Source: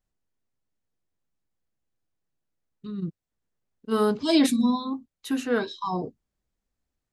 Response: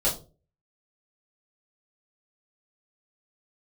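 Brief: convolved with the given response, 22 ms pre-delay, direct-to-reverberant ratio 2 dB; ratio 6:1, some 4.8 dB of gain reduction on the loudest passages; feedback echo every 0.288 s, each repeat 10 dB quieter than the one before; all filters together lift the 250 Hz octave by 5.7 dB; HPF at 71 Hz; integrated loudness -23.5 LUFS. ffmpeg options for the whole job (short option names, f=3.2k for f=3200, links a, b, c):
-filter_complex "[0:a]highpass=71,equalizer=f=250:t=o:g=6.5,acompressor=threshold=-16dB:ratio=6,aecho=1:1:288|576|864|1152:0.316|0.101|0.0324|0.0104,asplit=2[a][b];[1:a]atrim=start_sample=2205,adelay=22[c];[b][c]afir=irnorm=-1:irlink=0,volume=-13dB[d];[a][d]amix=inputs=2:normalize=0,volume=-3dB"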